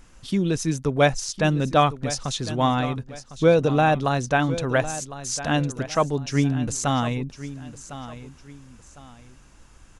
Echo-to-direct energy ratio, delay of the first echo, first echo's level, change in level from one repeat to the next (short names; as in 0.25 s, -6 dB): -13.5 dB, 1.055 s, -14.0 dB, -10.0 dB